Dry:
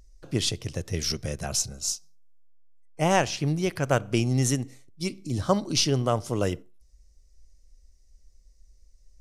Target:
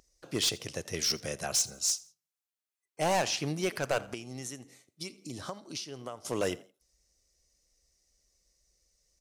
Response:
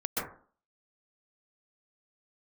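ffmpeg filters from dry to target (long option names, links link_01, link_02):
-filter_complex "[0:a]highpass=frequency=500:poles=1,asettb=1/sr,asplit=3[link_01][link_02][link_03];[link_01]atrim=end=4.034[link_04];[link_02]atrim=start=4.03:end=6.25,asetpts=PTS-STARTPTS,afade=type=in:duration=0.004:curve=qsin,afade=type=out:start_time=2.216:duration=0.004:curve=qsin,acompressor=threshold=-38dB:ratio=10[link_05];[link_03]atrim=start=6.246[link_06];[link_04][link_05]acrossfade=duration=0.004:curve1=hsin:curve2=qsin[link_07];[link_07][link_06]acrossfade=duration=0.004:curve1=qsin:curve2=hsin,volume=23.5dB,asoftclip=hard,volume=-23.5dB,asplit=3[link_08][link_09][link_10];[link_09]adelay=83,afreqshift=52,volume=-22dB[link_11];[link_10]adelay=166,afreqshift=104,volume=-31.4dB[link_12];[link_08][link_11][link_12]amix=inputs=3:normalize=0,volume=1dB"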